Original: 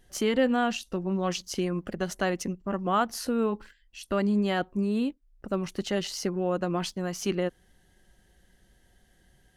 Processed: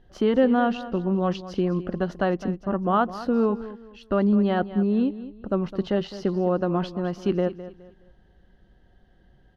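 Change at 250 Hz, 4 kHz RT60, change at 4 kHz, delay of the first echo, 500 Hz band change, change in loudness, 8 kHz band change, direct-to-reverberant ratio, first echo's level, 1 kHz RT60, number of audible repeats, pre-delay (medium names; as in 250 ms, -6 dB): +5.0 dB, no reverb, -4.5 dB, 209 ms, +4.5 dB, +4.5 dB, under -15 dB, no reverb, -14.5 dB, no reverb, 2, no reverb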